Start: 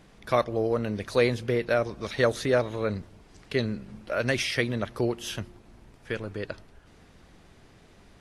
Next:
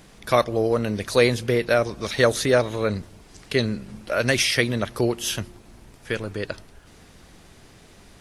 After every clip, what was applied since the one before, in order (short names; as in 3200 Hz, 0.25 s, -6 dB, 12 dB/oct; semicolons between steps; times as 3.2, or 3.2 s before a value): high shelf 5000 Hz +10 dB; gain +4.5 dB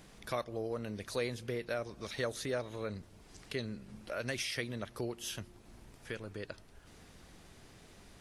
compressor 1.5:1, threshold -44 dBFS, peak gain reduction 11.5 dB; gain -7 dB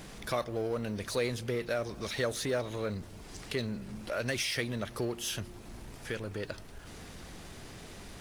G.711 law mismatch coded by mu; gain +2.5 dB